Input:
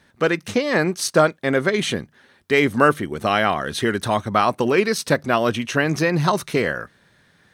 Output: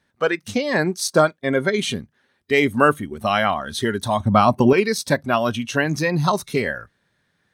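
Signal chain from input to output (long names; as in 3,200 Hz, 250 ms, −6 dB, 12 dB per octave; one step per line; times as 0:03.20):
noise reduction from a noise print of the clip's start 11 dB
0:04.20–0:04.73: low-shelf EQ 490 Hz +10.5 dB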